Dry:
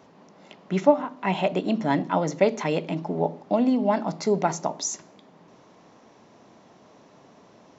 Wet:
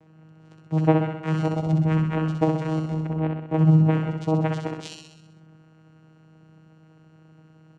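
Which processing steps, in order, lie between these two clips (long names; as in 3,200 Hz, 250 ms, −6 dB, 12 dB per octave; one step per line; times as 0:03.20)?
channel vocoder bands 4, saw 158 Hz
repeating echo 64 ms, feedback 58%, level −4 dB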